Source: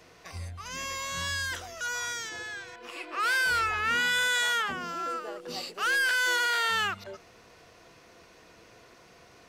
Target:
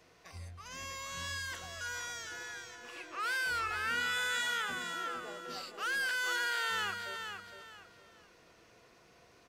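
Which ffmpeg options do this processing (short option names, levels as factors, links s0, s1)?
-af "aecho=1:1:461|922|1383|1844:0.447|0.13|0.0376|0.0109,volume=0.398"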